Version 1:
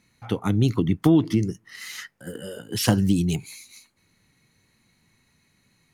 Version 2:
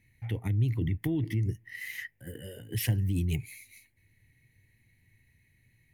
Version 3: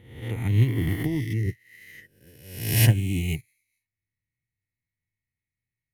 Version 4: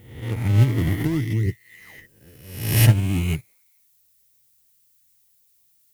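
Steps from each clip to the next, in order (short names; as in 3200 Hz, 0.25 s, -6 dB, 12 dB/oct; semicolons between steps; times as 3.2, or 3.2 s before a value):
EQ curve 120 Hz 0 dB, 180 Hz -15 dB, 320 Hz -12 dB, 900 Hz -19 dB, 1300 Hz -29 dB, 1900 Hz -3 dB, 4300 Hz -20 dB, 7000 Hz -19 dB, 14000 Hz -4 dB; in parallel at -1 dB: negative-ratio compressor -32 dBFS, ratio -0.5; on the sum: gain -3.5 dB
spectral swells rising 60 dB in 1.78 s; upward expander 2.5:1, over -45 dBFS; gain +9 dB
in parallel at -9 dB: decimation with a swept rate 35×, swing 160% 0.46 Hz; on the sum: added noise violet -63 dBFS; gain +1.5 dB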